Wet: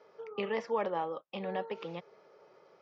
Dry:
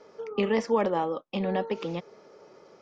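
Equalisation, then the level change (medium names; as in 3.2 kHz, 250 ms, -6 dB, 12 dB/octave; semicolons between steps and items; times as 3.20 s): band-pass 120–3900 Hz; peaking EQ 250 Hz -10 dB 1 oct; -5.0 dB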